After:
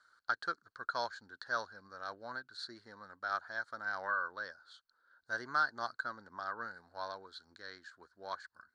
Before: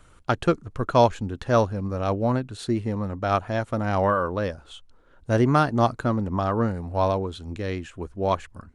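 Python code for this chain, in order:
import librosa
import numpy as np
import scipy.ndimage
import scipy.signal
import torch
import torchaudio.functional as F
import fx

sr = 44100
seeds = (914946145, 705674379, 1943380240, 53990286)

y = fx.double_bandpass(x, sr, hz=2600.0, octaves=1.5)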